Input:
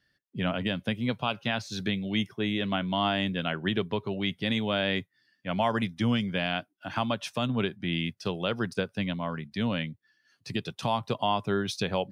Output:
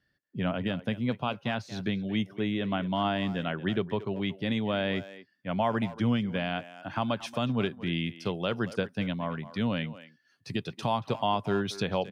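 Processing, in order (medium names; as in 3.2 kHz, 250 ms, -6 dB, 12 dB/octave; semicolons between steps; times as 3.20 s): treble shelf 2.3 kHz -9 dB, from 7.02 s -4 dB; speakerphone echo 230 ms, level -14 dB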